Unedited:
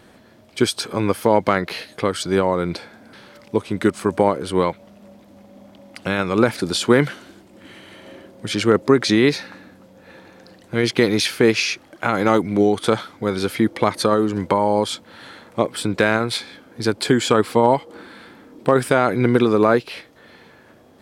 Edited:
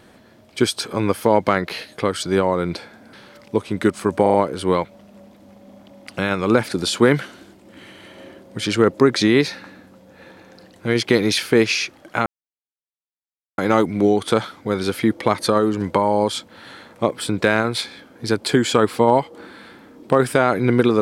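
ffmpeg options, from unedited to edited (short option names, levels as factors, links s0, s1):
-filter_complex "[0:a]asplit=5[s0][s1][s2][s3][s4];[s0]atrim=end=4.262[s5];[s1]atrim=start=4.218:end=4.262[s6];[s2]atrim=start=4.218:end=4.262[s7];[s3]atrim=start=4.218:end=12.14,asetpts=PTS-STARTPTS,afade=t=out:st=7.918:d=0.004:c=hsin,apad=pad_dur=1.32[s8];[s4]atrim=start=12.14,asetpts=PTS-STARTPTS,afade=t=in:d=0.004:c=hsin[s9];[s5][s6]acrossfade=d=0.004:c1=hsin:c2=hsin[s10];[s10][s7]acrossfade=d=0.004:c1=hsin:c2=hsin[s11];[s8][s9]concat=n=2:v=0:a=1[s12];[s11][s12]acrossfade=d=0.004:c1=hsin:c2=hsin"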